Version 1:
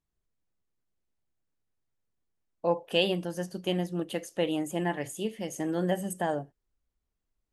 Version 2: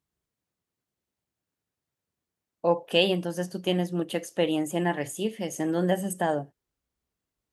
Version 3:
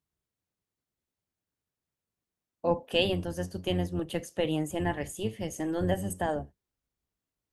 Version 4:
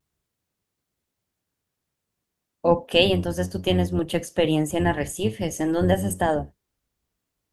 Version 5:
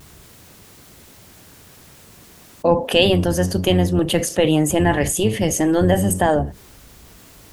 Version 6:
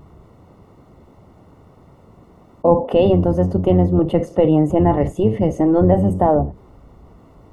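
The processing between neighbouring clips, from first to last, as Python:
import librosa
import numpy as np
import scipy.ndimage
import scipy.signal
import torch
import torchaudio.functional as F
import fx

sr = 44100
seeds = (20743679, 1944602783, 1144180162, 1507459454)

y1 = scipy.signal.sosfilt(scipy.signal.butter(2, 81.0, 'highpass', fs=sr, output='sos'), x)
y1 = y1 * librosa.db_to_amplitude(3.5)
y2 = fx.octave_divider(y1, sr, octaves=1, level_db=-3.0)
y2 = y2 * librosa.db_to_amplitude(-4.0)
y3 = fx.vibrato(y2, sr, rate_hz=0.35, depth_cents=14.0)
y3 = y3 * librosa.db_to_amplitude(8.0)
y4 = fx.env_flatten(y3, sr, amount_pct=50)
y4 = y4 * librosa.db_to_amplitude(2.0)
y5 = scipy.signal.savgol_filter(y4, 65, 4, mode='constant')
y5 = y5 * librosa.db_to_amplitude(2.5)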